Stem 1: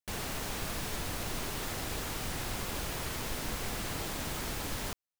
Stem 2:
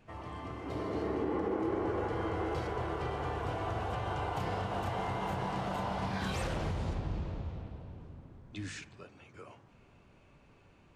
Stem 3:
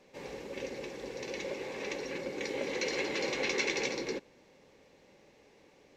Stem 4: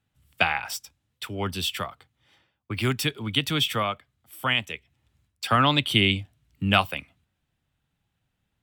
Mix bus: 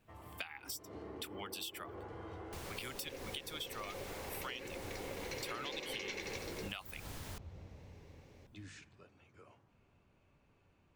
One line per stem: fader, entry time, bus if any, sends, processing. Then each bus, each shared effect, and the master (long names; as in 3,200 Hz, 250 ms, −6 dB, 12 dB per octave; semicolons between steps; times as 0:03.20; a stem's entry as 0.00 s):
−6.0 dB, 2.45 s, bus A, no send, no processing
−10.0 dB, 0.00 s, bus A, no send, no processing
−2.5 dB, 2.50 s, no bus, no send, no processing
−6.0 dB, 0.00 s, bus A, no send, reverb reduction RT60 1 s; spectral tilt +3.5 dB per octave
bus A: 0.0 dB, parametric band 87 Hz +4.5 dB 0.27 octaves; downward compressor 5 to 1, threshold −33 dBFS, peak gain reduction 14 dB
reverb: not used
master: downward compressor 2 to 1, threshold −47 dBFS, peak gain reduction 11 dB